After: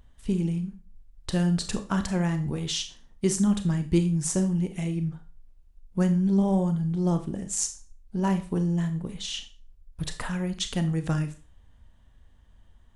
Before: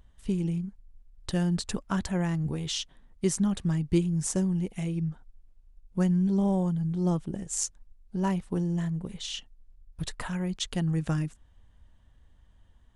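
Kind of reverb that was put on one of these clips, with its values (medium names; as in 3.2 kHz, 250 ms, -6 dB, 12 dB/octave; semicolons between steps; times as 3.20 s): Schroeder reverb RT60 0.35 s, combs from 27 ms, DRR 8 dB; trim +2 dB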